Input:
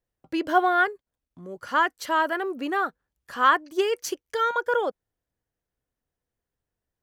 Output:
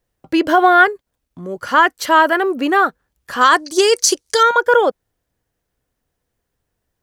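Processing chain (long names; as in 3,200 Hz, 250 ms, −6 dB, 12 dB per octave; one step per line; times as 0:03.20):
0:03.41–0:04.43: flat-topped bell 6,300 Hz +13.5 dB
boost into a limiter +12.5 dB
level −1 dB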